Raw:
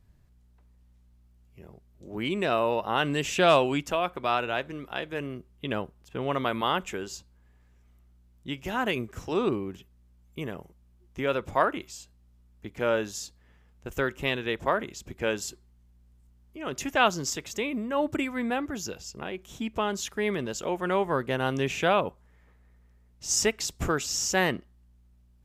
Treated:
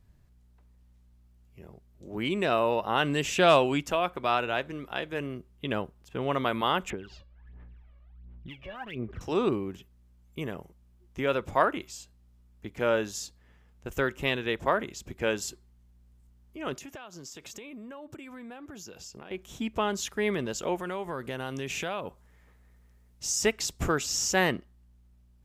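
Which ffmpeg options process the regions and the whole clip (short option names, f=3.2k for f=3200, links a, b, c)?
-filter_complex "[0:a]asettb=1/sr,asplit=3[a][b][c];[a]atrim=end=6.904[d];[b]atrim=start=6.9:end=9.21,asetpts=PTS-STARTPTS,afade=t=in:d=0.004:c=qsin,afade=t=out:st=2.306:d=0.004:c=qsin,lowpass=f=3.3k:w=0.5412,lowpass=f=3.3k:w=1.3066,acompressor=threshold=-44dB:ratio=3:attack=3.2:release=140:knee=1:detection=peak,aphaser=in_gain=1:out_gain=1:delay=1.8:decay=0.76:speed=1.4:type=sinusoidal[e];[c]atrim=start=9.206[f];[d][e]acrossfade=d=0.004:c1=hsin:c2=qsin[g];[g][f]acrossfade=d=0.004:c1=qsin:c2=hsin,asettb=1/sr,asplit=3[h][i][j];[h]atrim=end=16.754[k];[i]atrim=start=16.75:end=19.31,asetpts=PTS-STARTPTS,afade=t=in:d=0.004:c=qsin,afade=t=out:st=2.556:d=0.004:c=qsin,highpass=f=110:p=1,bandreject=f=2k:w=16,acompressor=threshold=-40dB:ratio=16:attack=3.2:release=140:knee=1:detection=peak[l];[j]atrim=start=19.306[m];[k][l]acrossfade=d=0.004:c1=hsin:c2=qsin[n];[n][m]acrossfade=d=0.004:c1=qsin:c2=hsin,asettb=1/sr,asplit=3[o][p][q];[o]atrim=end=20.784[r];[p]atrim=start=20.78:end=23.44,asetpts=PTS-STARTPTS,afade=t=in:d=0.004:c=qsin,afade=t=out:st=2.656:d=0.004:c=qsin,acompressor=threshold=-33dB:ratio=3:attack=3.2:release=140:knee=1:detection=peak,highshelf=f=4k:g=6.5[s];[q]atrim=start=23.436[t];[r][s]acrossfade=d=0.004:c1=hsin:c2=qsin[u];[u][t]acrossfade=d=0.004:c1=qsin:c2=hsin"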